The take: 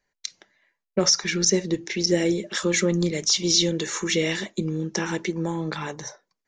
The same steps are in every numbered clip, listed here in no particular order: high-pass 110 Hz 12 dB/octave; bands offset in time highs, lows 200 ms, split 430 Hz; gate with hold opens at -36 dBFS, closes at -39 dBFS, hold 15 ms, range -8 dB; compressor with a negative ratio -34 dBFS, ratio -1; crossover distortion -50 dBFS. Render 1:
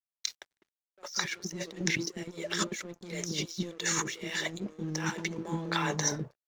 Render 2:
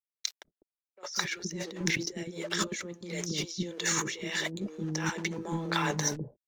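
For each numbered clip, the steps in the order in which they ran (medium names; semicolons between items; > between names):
high-pass > compressor with a negative ratio > bands offset in time > crossover distortion > gate with hold; high-pass > crossover distortion > compressor with a negative ratio > bands offset in time > gate with hold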